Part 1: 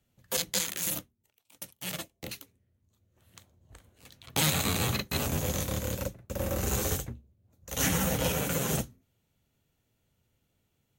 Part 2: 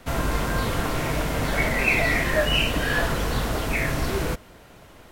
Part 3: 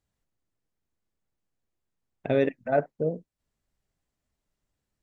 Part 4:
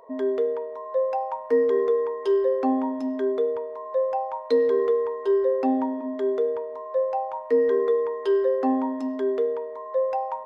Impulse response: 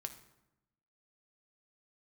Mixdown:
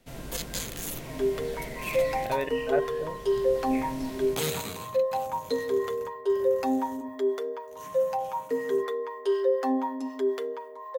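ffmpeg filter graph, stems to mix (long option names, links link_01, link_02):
-filter_complex "[0:a]volume=-5dB,afade=type=out:start_time=4.57:duration=0.3:silence=0.298538,afade=type=out:start_time=6.33:duration=0.47:silence=0.446684[link_01];[1:a]equalizer=frequency=1200:width_type=o:width=1.2:gain=-10.5,volume=-15.5dB,asplit=2[link_02][link_03];[link_03]volume=-3.5dB[link_04];[2:a]equalizer=frequency=230:width=0.69:gain=-12.5,volume=-1dB,asplit=2[link_05][link_06];[3:a]aemphasis=mode=production:type=riaa,aecho=1:1:7.3:0.59,acrossover=split=670[link_07][link_08];[link_07]aeval=exprs='val(0)*(1-0.7/2+0.7/2*cos(2*PI*4*n/s))':channel_layout=same[link_09];[link_08]aeval=exprs='val(0)*(1-0.7/2-0.7/2*cos(2*PI*4*n/s))':channel_layout=same[link_10];[link_09][link_10]amix=inputs=2:normalize=0,adelay=1000,volume=1dB[link_11];[link_06]apad=whole_len=225545[link_12];[link_02][link_12]sidechaincompress=threshold=-43dB:ratio=8:attack=16:release=624[link_13];[4:a]atrim=start_sample=2205[link_14];[link_04][link_14]afir=irnorm=-1:irlink=0[link_15];[link_01][link_13][link_05][link_11][link_15]amix=inputs=5:normalize=0,equalizer=frequency=68:width=2.4:gain=-12"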